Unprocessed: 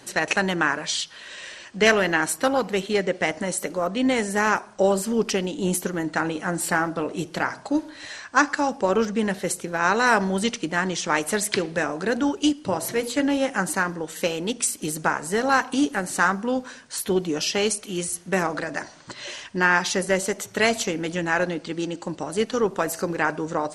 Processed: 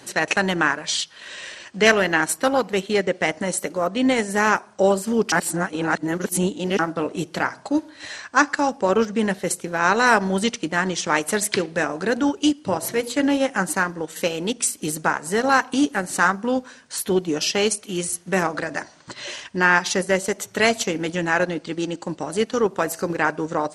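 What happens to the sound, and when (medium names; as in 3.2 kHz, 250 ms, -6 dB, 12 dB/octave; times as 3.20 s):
5.32–6.79 s: reverse
whole clip: high-pass 54 Hz; transient shaper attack -2 dB, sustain -6 dB; trim +3 dB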